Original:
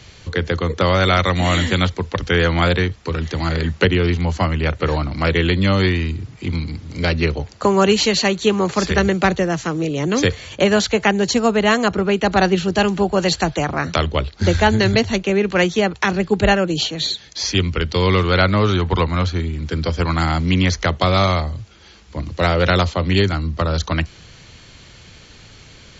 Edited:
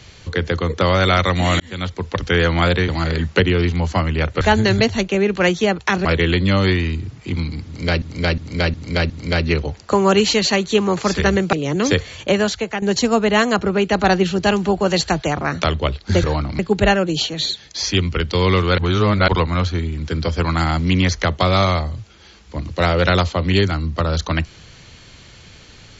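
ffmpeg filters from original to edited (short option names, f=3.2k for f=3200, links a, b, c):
-filter_complex "[0:a]asplit=15[a][b][c][d][e][f][g][h][i][j][k][l][m][n][o];[a]atrim=end=1.6,asetpts=PTS-STARTPTS,afade=t=out:st=1.596:d=0.004:c=hsin[p];[b]atrim=start=1.6:end=2.882,asetpts=PTS-STARTPTS,afade=t=in:d=0.52[q];[c]atrim=start=3.328:end=4.862[r];[d]atrim=start=14.558:end=16.202[s];[e]atrim=start=5.208:end=7.182[t];[f]atrim=start=6.818:end=7.182[u];[g]atrim=start=6.818:end=7.182[v];[h]atrim=start=6.818:end=7.182[w];[i]atrim=start=6.818:end=9.252[x];[j]atrim=start=9.848:end=11.14,asetpts=PTS-STARTPTS,afade=t=out:st=0.672:d=0.62:silence=0.298538[y];[k]atrim=start=11.14:end=14.562,asetpts=PTS-STARTPTS,afade=t=in:d=0.004:c=hsin:silence=0.298538[z];[l]atrim=start=4.858:end=5.212[aa];[m]atrim=start=16.198:end=18.392[ab];[n]atrim=start=18.388:end=18.892,asetpts=PTS-STARTPTS,areverse[ac];[o]atrim=start=18.888[ad];[p][q]concat=n=2:v=0:a=1[ae];[ae][r]acrossfade=d=0.004:c1=hsin:c2=hsin[af];[af][s]acrossfade=d=0.004:c1=hsin:c2=hsin[ag];[ag][t]acrossfade=d=0.004:c1=hsin:c2=hsin[ah];[ah][u]acrossfade=d=0.004:c1=hsin:c2=hsin[ai];[ai][v]acrossfade=d=0.004:c1=hsin:c2=hsin[aj];[aj][w]acrossfade=d=0.004:c1=hsin:c2=hsin[ak];[ak][x]acrossfade=d=0.004:c1=hsin:c2=hsin[al];[y][z]concat=n=2:v=0:a=1[am];[al][am]acrossfade=d=0.004:c1=hsin:c2=hsin[an];[an][aa]acrossfade=d=0.004:c1=hsin:c2=hsin[ao];[ao][ab]acrossfade=d=0.004:c1=hsin:c2=hsin[ap];[ap][ac]acrossfade=d=0.004:c1=hsin:c2=hsin[aq];[aq][ad]acrossfade=d=0.004:c1=hsin:c2=hsin"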